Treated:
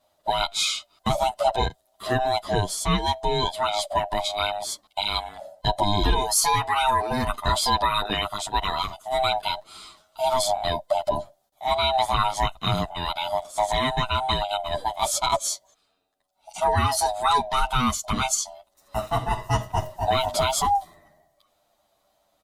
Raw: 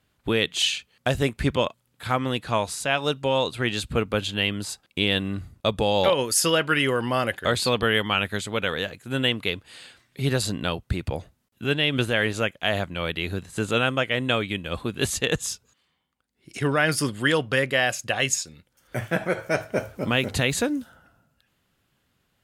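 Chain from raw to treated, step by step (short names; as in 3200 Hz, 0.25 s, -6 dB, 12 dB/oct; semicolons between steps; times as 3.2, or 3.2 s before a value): band-swap scrambler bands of 500 Hz; band shelf 2100 Hz -8.5 dB 1 oct; in parallel at 0 dB: limiter -16.5 dBFS, peak gain reduction 7 dB; on the sum: endless flanger 9.3 ms -0.29 Hz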